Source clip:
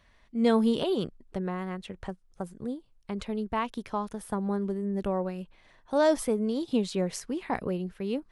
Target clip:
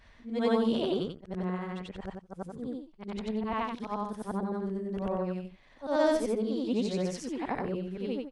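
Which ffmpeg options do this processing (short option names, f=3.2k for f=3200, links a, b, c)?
-af "afftfilt=real='re':imag='-im':win_size=8192:overlap=0.75,lowpass=7.2k,acompressor=mode=upward:threshold=-51dB:ratio=2.5,volume=2.5dB"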